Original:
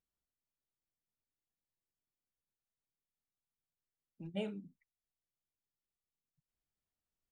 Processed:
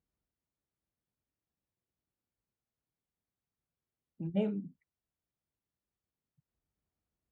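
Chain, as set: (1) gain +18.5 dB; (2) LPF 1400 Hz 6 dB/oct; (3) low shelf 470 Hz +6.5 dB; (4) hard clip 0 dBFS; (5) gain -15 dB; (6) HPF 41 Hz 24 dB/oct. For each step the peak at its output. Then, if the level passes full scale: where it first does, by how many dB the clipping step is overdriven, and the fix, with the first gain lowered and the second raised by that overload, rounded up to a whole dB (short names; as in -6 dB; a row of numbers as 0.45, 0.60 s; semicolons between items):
-9.0, -10.0, -5.0, -5.0, -20.0, -20.0 dBFS; no overload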